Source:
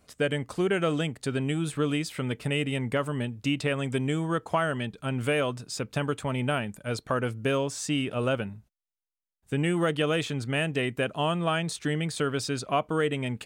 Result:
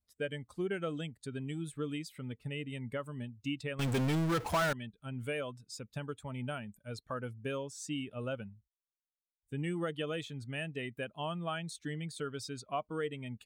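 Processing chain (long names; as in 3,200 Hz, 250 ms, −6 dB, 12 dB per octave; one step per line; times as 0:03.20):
spectral dynamics exaggerated over time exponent 1.5
0:02.18–0:02.70: high-shelf EQ 3,600 Hz −7.5 dB
0:03.79–0:04.73: power curve on the samples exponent 0.35
level −8 dB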